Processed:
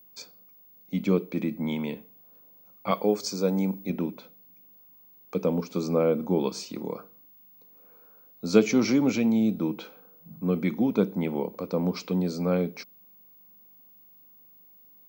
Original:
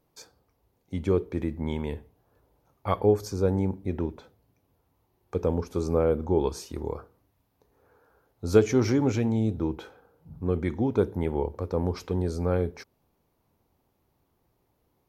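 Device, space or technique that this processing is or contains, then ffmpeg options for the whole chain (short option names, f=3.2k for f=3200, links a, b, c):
old television with a line whistle: -filter_complex "[0:a]highpass=f=180:w=0.5412,highpass=f=180:w=1.3066,equalizer=f=190:t=q:w=4:g=8,equalizer=f=390:t=q:w=4:g=-8,equalizer=f=850:t=q:w=4:g=-6,equalizer=f=1.7k:t=q:w=4:g=-9,equalizer=f=2.4k:t=q:w=4:g=6,equalizer=f=4.4k:t=q:w=4:g=5,lowpass=f=7.5k:w=0.5412,lowpass=f=7.5k:w=1.3066,aeval=exprs='val(0)+0.00178*sin(2*PI*15625*n/s)':c=same,asettb=1/sr,asplit=3[a][b][c];[a]atrim=end=2.914[d];[b]atrim=start=2.91:end=3.9,asetpts=PTS-STARTPTS,afade=t=in:d=0.004:c=qsin,afade=t=out:st=0.986:d=0.004:c=qsin,bass=f=250:g=-7,treble=f=4k:g=6[e];[c]atrim=start=3.896[f];[d][e]acrossfade=d=0.004:c1=hsin:c2=qsin[g];[g][f]acrossfade=d=0.004:c1=qsin:c2=hsin,volume=3dB"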